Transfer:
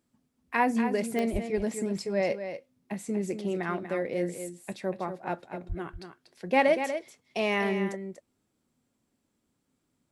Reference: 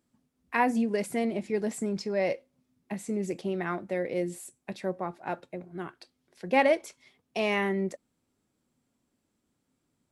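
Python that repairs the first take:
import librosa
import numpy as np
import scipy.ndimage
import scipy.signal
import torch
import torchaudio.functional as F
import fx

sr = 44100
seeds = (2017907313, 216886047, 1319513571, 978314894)

y = fx.fix_declick_ar(x, sr, threshold=10.0)
y = fx.highpass(y, sr, hz=140.0, slope=24, at=(1.32, 1.44), fade=0.02)
y = fx.highpass(y, sr, hz=140.0, slope=24, at=(5.68, 5.8), fade=0.02)
y = fx.fix_echo_inverse(y, sr, delay_ms=240, level_db=-9.0)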